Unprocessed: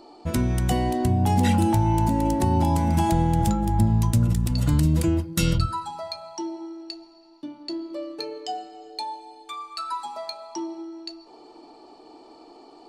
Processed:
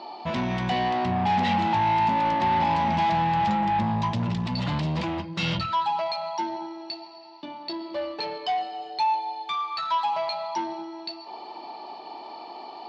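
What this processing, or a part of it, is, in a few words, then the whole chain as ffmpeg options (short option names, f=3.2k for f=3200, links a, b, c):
overdrive pedal into a guitar cabinet: -filter_complex "[0:a]asplit=2[a][b];[b]highpass=f=720:p=1,volume=28dB,asoftclip=type=tanh:threshold=-8dB[c];[a][c]amix=inputs=2:normalize=0,lowpass=f=5.8k:p=1,volume=-6dB,highpass=100,equalizer=f=190:t=q:w=4:g=5,equalizer=f=300:t=q:w=4:g=-10,equalizer=f=460:t=q:w=4:g=-9,equalizer=f=910:t=q:w=4:g=4,equalizer=f=1.4k:t=q:w=4:g=-8,lowpass=f=4.3k:w=0.5412,lowpass=f=4.3k:w=1.3066,volume=-8.5dB"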